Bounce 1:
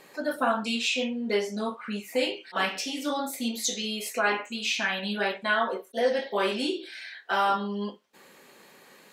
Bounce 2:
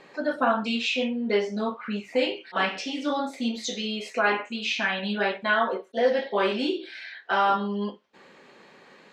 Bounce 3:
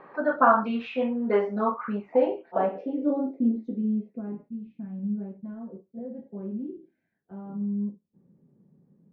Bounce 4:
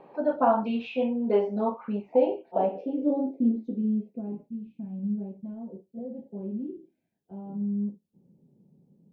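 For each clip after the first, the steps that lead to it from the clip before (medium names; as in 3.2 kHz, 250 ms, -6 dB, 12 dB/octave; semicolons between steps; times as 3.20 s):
distance through air 140 m; trim +3 dB
low-pass sweep 1.2 kHz -> 160 Hz, 1.74–4.43 s
high-order bell 1.5 kHz -13.5 dB 1.1 oct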